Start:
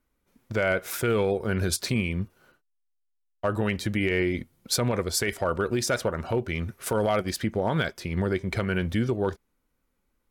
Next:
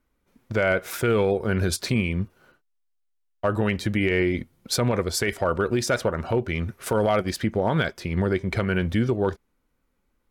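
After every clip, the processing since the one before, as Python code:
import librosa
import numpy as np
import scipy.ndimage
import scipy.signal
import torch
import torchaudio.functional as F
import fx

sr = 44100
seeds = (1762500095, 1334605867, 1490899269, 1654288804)

y = fx.high_shelf(x, sr, hz=5100.0, db=-5.5)
y = y * 10.0 ** (3.0 / 20.0)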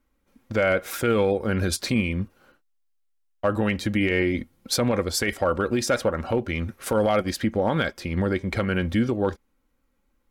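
y = x + 0.38 * np.pad(x, (int(3.7 * sr / 1000.0), 0))[:len(x)]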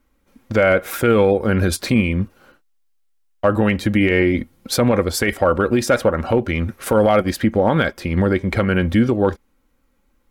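y = fx.dynamic_eq(x, sr, hz=5600.0, q=0.7, threshold_db=-44.0, ratio=4.0, max_db=-6)
y = y * 10.0 ** (7.0 / 20.0)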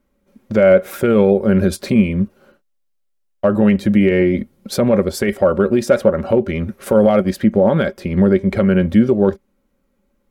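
y = fx.small_body(x, sr, hz=(200.0, 390.0, 560.0), ring_ms=55, db=12)
y = y * 10.0 ** (-4.5 / 20.0)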